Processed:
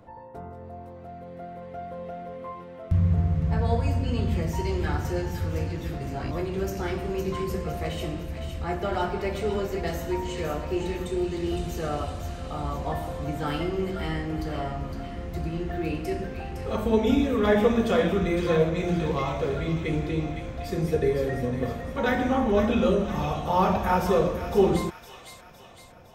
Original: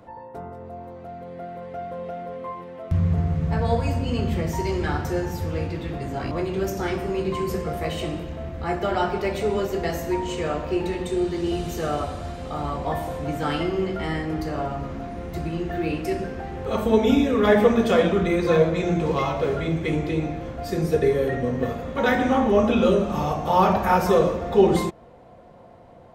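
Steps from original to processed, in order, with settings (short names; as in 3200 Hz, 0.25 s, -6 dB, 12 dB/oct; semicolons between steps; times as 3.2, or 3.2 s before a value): low shelf 100 Hz +8 dB; on a send: thin delay 0.51 s, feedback 51%, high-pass 2000 Hz, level -6 dB; on the sum: gain -4.5 dB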